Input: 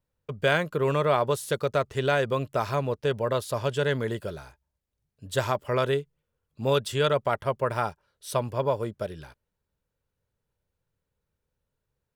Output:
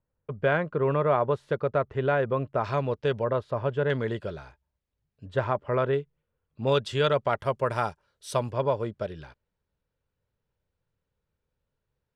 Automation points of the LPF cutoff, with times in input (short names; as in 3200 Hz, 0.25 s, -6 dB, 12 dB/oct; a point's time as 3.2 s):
1700 Hz
from 2.64 s 4000 Hz
from 3.24 s 1600 Hz
from 3.9 s 3900 Hz
from 5.26 s 1800 Hz
from 5.94 s 3000 Hz
from 6.67 s 5100 Hz
from 7.39 s 9000 Hz
from 8.51 s 4400 Hz